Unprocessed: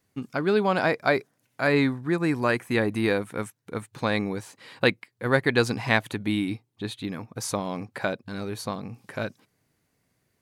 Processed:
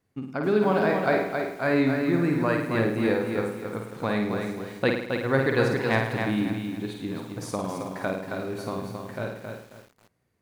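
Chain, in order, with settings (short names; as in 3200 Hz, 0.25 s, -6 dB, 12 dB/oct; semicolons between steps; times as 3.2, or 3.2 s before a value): high shelf 2200 Hz -9 dB; flutter echo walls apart 9 m, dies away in 0.66 s; lo-fi delay 0.27 s, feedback 35%, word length 8-bit, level -5 dB; gain -1.5 dB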